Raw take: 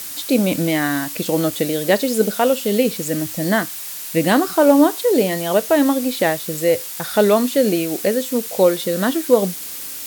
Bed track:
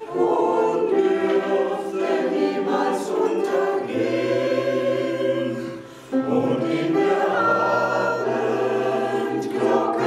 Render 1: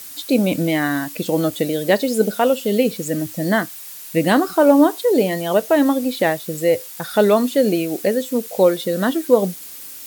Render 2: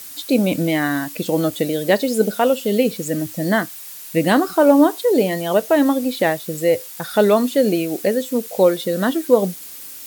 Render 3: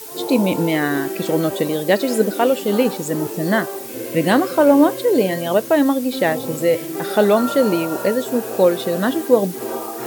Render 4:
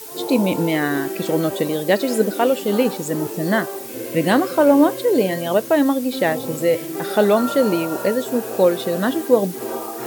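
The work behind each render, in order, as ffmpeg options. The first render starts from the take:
-af "afftdn=nr=7:nf=-31"
-af anull
-filter_complex "[1:a]volume=-7.5dB[a];[0:a][a]amix=inputs=2:normalize=0"
-af "volume=-1dB"

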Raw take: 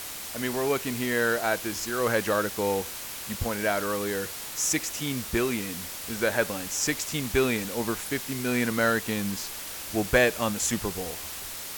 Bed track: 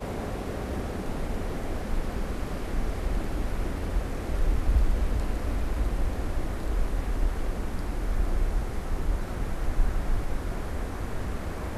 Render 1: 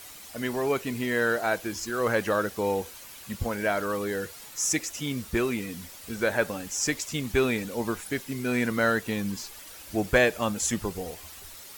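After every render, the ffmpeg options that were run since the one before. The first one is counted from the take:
-af "afftdn=nr=10:nf=-38"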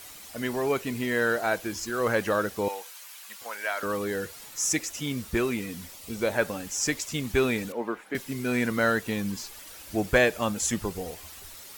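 -filter_complex "[0:a]asettb=1/sr,asplit=3[a][b][c];[a]atrim=end=2.684[d];[b]atrim=start=2.68:end=3.83,asetpts=PTS-STARTPTS,afade=t=in:d=0.004:c=qsin,afade=t=out:st=1.146:d=0.004:c=qsin,highpass=910[e];[c]atrim=start=3.826[f];[d][e]acrossfade=d=0.004:c1=hsin:c2=qsin[g];[g][f]acrossfade=d=0.004:c1=qsin:c2=hsin,asettb=1/sr,asplit=3[h][i][j];[h]atrim=end=5.944[k];[i]atrim=start=5.94:end=6.36,asetpts=PTS-STARTPTS,afade=t=in:d=0.004:c=qsin,afade=t=out:st=0.416:d=0.004:c=qsin,equalizer=f=1.6k:w=4.5:g=-11.5[l];[j]atrim=start=6.356[m];[k][l]acrossfade=d=0.004:c1=hsin:c2=qsin[n];[n][m]acrossfade=d=0.004:c1=qsin:c2=hsin,asettb=1/sr,asplit=3[o][p][q];[o]atrim=end=7.724[r];[p]atrim=start=7.72:end=8.15,asetpts=PTS-STARTPTS,afade=t=in:d=0.004:c=qsin,afade=t=out:st=0.426:d=0.004:c=qsin,acrossover=split=220 2600:gain=0.0708 1 0.112[s][t][u];[s][t][u]amix=inputs=3:normalize=0[v];[q]atrim=start=8.146[w];[r][v]acrossfade=d=0.004:c1=hsin:c2=qsin[x];[x][w]acrossfade=d=0.004:c1=qsin:c2=hsin"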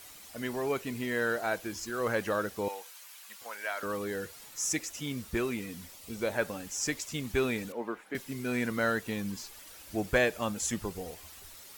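-af "volume=-5dB"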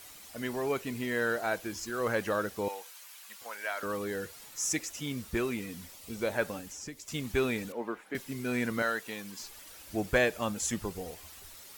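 -filter_complex "[0:a]asettb=1/sr,asplit=3[a][b][c];[a]atrim=end=6.594[d];[b]atrim=start=6.59:end=7.08,asetpts=PTS-STARTPTS,afade=t=in:d=0.004:c=qsin,afade=t=out:st=0.486:d=0.004:c=qsin,acrossover=split=480|4700[e][f][g];[e]acompressor=threshold=-43dB:ratio=4[h];[f]acompressor=threshold=-51dB:ratio=4[i];[g]acompressor=threshold=-48dB:ratio=4[j];[h][i][j]amix=inputs=3:normalize=0[k];[c]atrim=start=7.076[l];[d][k]acrossfade=d=0.004:c1=hsin:c2=qsin[m];[m][l]acrossfade=d=0.004:c1=qsin:c2=hsin,asettb=1/sr,asplit=3[n][o][p];[n]atrim=end=8.824[q];[o]atrim=start=8.82:end=9.4,asetpts=PTS-STARTPTS,afade=t=in:d=0.004:c=qsin,afade=t=out:st=0.576:d=0.004:c=qsin,highpass=f=600:p=1[r];[p]atrim=start=9.396[s];[q][r]acrossfade=d=0.004:c1=hsin:c2=qsin[t];[t][s]acrossfade=d=0.004:c1=qsin:c2=hsin"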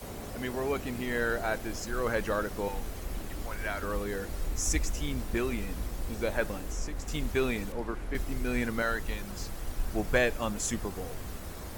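-filter_complex "[1:a]volume=-8.5dB[a];[0:a][a]amix=inputs=2:normalize=0"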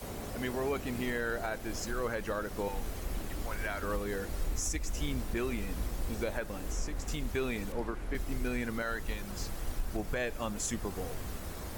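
-af "alimiter=limit=-23.5dB:level=0:latency=1:release=265"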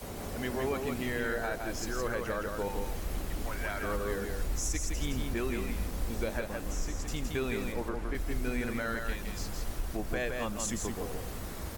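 -af "aecho=1:1:165:0.596"

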